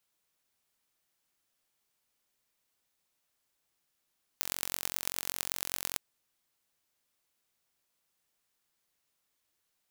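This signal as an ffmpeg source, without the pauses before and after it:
ffmpeg -f lavfi -i "aevalsrc='0.708*eq(mod(n,978),0)*(0.5+0.5*eq(mod(n,4890),0))':duration=1.56:sample_rate=44100" out.wav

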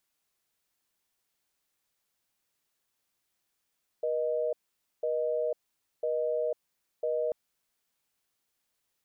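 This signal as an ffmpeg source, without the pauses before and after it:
ffmpeg -f lavfi -i "aevalsrc='0.0335*(sin(2*PI*480*t)+sin(2*PI*620*t))*clip(min(mod(t,1),0.5-mod(t,1))/0.005,0,1)':duration=3.29:sample_rate=44100" out.wav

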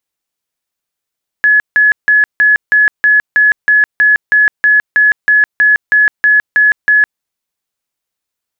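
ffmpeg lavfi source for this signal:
ffmpeg -f lavfi -i "aevalsrc='0.562*sin(2*PI*1700*mod(t,0.32))*lt(mod(t,0.32),271/1700)':duration=5.76:sample_rate=44100" out.wav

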